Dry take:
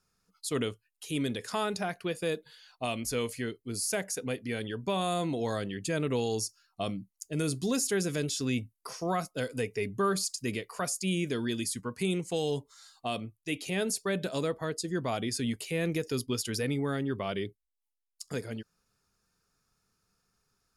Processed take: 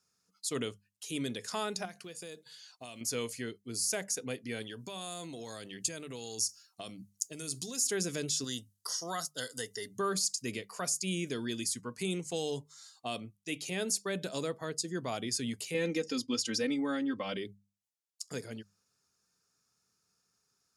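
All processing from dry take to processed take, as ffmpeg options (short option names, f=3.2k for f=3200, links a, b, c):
-filter_complex "[0:a]asettb=1/sr,asplit=3[a][b][c];[a]atrim=end=1.854[d];[b]atrim=start=1.85:end=3.01,asetpts=PTS-STARTPTS,afade=t=in:d=0.004:c=qsin,afade=t=out:st=1.156:d=0.004:c=qsin,equalizer=f=7.4k:w=0.75:g=7,acompressor=threshold=-40dB:ratio=4:attack=3.2:release=140:knee=1:detection=peak,acrusher=bits=9:mode=log:mix=0:aa=0.000001[e];[c]atrim=start=3.006[f];[d][e]acrossfade=d=0.004:c1=hsin:c2=qsin[g];[g][f]acrossfade=d=0.004:c1=qsin:c2=hsin,asettb=1/sr,asplit=3[h][i][j];[h]atrim=end=4.624[k];[i]atrim=start=4.62:end=7.86,asetpts=PTS-STARTPTS,afade=t=in:d=0.004:c=qsin,afade=t=out:st=3.236:d=0.004:c=qsin,acompressor=threshold=-35dB:ratio=10:attack=3.2:release=140:knee=1:detection=peak,highshelf=f=3.1k:g=10[l];[j]atrim=start=7.856[m];[k][l]acrossfade=d=0.004:c1=hsin:c2=qsin[n];[n][m]acrossfade=d=0.004:c1=qsin:c2=hsin,asettb=1/sr,asplit=3[o][p][q];[o]atrim=end=8.444[r];[p]atrim=start=8.44:end=9.99,asetpts=PTS-STARTPTS,afade=t=in:d=0.004:c=qsin,afade=t=out:st=1.546:d=0.004:c=qsin,asuperstop=centerf=2400:order=8:qfactor=2.9,tiltshelf=f=1.2k:g=-7.5[s];[q]atrim=start=9.986[t];[r][s]acrossfade=d=0.004:c1=hsin:c2=qsin[u];[u][t]acrossfade=d=0.004:c1=qsin:c2=hsin,asettb=1/sr,asplit=3[v][w][x];[v]atrim=end=15.744[y];[w]atrim=start=15.74:end=17.37,asetpts=PTS-STARTPTS,afade=t=in:d=0.004:c=qsin,afade=t=out:st=1.626:d=0.004:c=qsin,lowpass=6.3k,aecho=1:1:3.8:1,atrim=end_sample=71883[z];[x]atrim=start=17.366[aa];[y][z]acrossfade=d=0.004:c1=hsin:c2=qsin[ab];[ab][aa]acrossfade=d=0.004:c1=qsin:c2=hsin,highpass=97,equalizer=f=6.4k:t=o:w=1.2:g=8,bandreject=f=50:t=h:w=6,bandreject=f=100:t=h:w=6,bandreject=f=150:t=h:w=6,bandreject=f=200:t=h:w=6,volume=-4.5dB"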